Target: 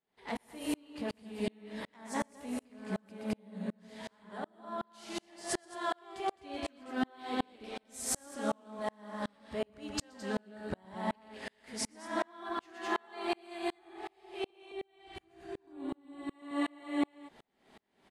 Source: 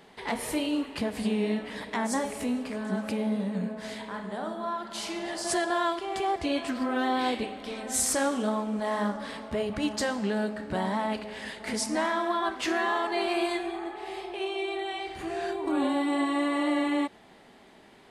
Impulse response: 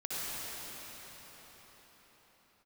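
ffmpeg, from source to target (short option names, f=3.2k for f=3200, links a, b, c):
-filter_complex "[0:a]asettb=1/sr,asplit=3[a][b][c];[a]atrim=end=14.504[d];[b]atrim=start=14.5:end=16.3,asetpts=PTS-STARTPTS,afade=t=in:d=0.004:c=qsin,afade=t=out:st=1.796:d=0.004:c=qsin,acrossover=split=300[e][f];[f]acompressor=threshold=-40dB:ratio=6[g];[e][g]amix=inputs=2:normalize=0[h];[c]atrim=start=16.296[i];[d][h]acrossfade=d=0.004:c1=hsin:c2=qsin[j];[j][i]acrossfade=d=0.004:c1=qsin:c2=hsin,aecho=1:1:122.4|212.8:0.447|0.708,aeval=exprs='val(0)*pow(10,-37*if(lt(mod(-2.7*n/s,1),2*abs(-2.7)/1000),1-mod(-2.7*n/s,1)/(2*abs(-2.7)/1000),(mod(-2.7*n/s,1)-2*abs(-2.7)/1000)/(1-2*abs(-2.7)/1000))/20)':c=same,volume=-2.5dB"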